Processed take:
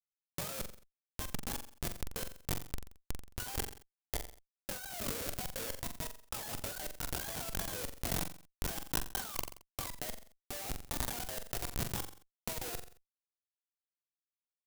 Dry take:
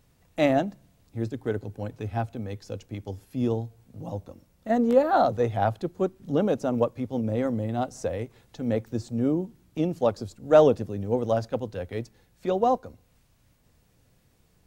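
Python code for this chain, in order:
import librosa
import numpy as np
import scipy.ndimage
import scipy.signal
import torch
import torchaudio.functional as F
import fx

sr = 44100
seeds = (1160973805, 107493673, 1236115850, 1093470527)

y = fx.octave_mirror(x, sr, pivot_hz=600.0)
y = fx.transient(y, sr, attack_db=-6, sustain_db=-10)
y = fx.air_absorb(y, sr, metres=150.0)
y = fx.schmitt(y, sr, flips_db=-32.5)
y = librosa.effects.preemphasis(y, coef=0.8, zi=[0.0])
y = fx.over_compress(y, sr, threshold_db=-47.0, ratio=-0.5)
y = fx.room_flutter(y, sr, wall_m=7.5, rt60_s=0.22)
y = fx.sustainer(y, sr, db_per_s=120.0)
y = y * 10.0 ** (10.0 / 20.0)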